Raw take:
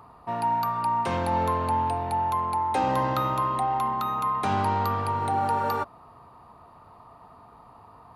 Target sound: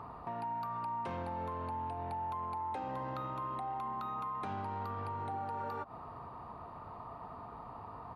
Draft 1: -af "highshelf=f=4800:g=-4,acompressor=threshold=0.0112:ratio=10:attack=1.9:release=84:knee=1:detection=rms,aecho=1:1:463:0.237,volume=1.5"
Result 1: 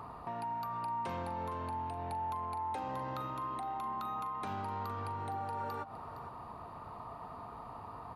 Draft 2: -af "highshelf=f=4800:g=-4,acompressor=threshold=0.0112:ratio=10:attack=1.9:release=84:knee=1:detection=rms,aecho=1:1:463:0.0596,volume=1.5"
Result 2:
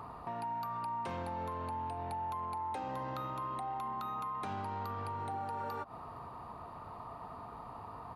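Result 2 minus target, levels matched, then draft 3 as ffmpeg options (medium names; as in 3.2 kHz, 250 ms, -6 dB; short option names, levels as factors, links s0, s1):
4 kHz band +3.5 dB
-af "highshelf=f=4800:g=-15.5,acompressor=threshold=0.0112:ratio=10:attack=1.9:release=84:knee=1:detection=rms,aecho=1:1:463:0.0596,volume=1.5"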